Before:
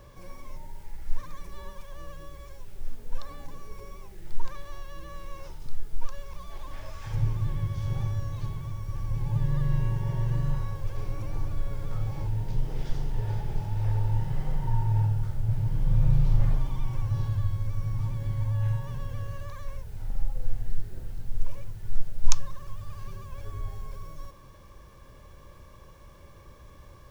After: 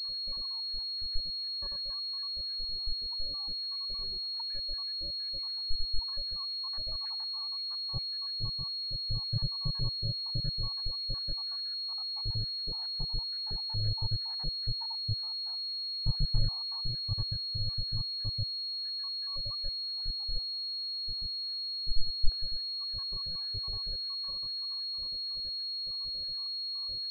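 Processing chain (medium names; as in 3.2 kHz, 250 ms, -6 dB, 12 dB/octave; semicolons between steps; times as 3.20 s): random holes in the spectrogram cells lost 78%; 20.51–21.00 s: peaking EQ 1.4 kHz -12.5 dB 2.1 oct; in parallel at -2.5 dB: compression, threshold -35 dBFS, peak gain reduction 24.5 dB; on the sum: buffer glitch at 4.30/7.71/9.02/15.23/23.31 s, samples 256, times 6; class-D stage that switches slowly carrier 4.3 kHz; trim -7 dB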